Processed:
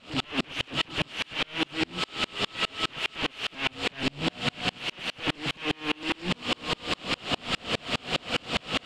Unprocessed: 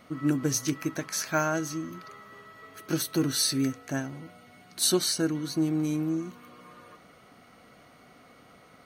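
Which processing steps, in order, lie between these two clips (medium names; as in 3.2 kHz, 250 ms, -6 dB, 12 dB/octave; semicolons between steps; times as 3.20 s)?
one-bit delta coder 32 kbps, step -28 dBFS; in parallel at +2.5 dB: peak limiter -24 dBFS, peak gain reduction 11 dB; on the sum: integer overflow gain 27 dB; resonant low-pass 2.9 kHz, resonance Q 4.3; on a send: thinning echo 345 ms, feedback 85%, high-pass 200 Hz, level -11 dB; on the sum: sawtooth tremolo in dB swelling 4.9 Hz, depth 37 dB; trim +6.5 dB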